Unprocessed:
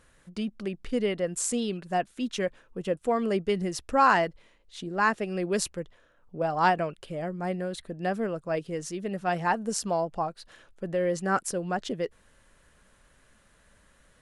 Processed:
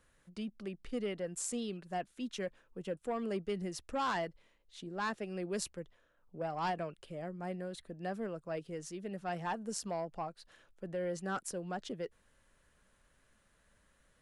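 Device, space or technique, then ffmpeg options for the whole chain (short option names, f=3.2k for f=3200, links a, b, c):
one-band saturation: -filter_complex "[0:a]acrossover=split=240|3500[a][b][c];[b]asoftclip=type=tanh:threshold=-20.5dB[d];[a][d][c]amix=inputs=3:normalize=0,volume=-9dB"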